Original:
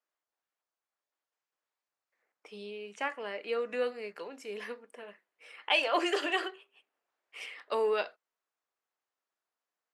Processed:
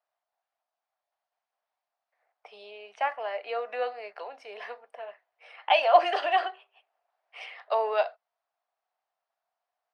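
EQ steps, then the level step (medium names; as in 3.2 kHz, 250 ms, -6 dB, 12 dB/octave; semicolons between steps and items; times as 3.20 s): Savitzky-Golay filter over 15 samples; resonant high-pass 700 Hz, resonance Q 5.4; 0.0 dB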